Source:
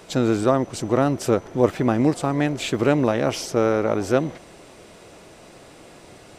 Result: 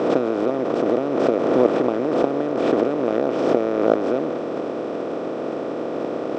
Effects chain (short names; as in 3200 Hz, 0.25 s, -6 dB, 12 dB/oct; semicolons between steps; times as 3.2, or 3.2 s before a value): per-bin compression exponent 0.2; gate -7 dBFS, range -13 dB; tilt shelf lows +7 dB, about 1200 Hz; transient shaper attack +10 dB, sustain +6 dB; BPF 260–7600 Hz; air absorption 91 m; backwards sustainer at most 35 dB/s; gain -2.5 dB